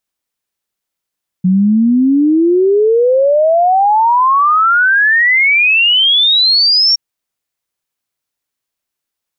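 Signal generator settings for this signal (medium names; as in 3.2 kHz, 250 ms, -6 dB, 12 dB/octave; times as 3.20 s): log sweep 180 Hz -> 5.6 kHz 5.52 s -7 dBFS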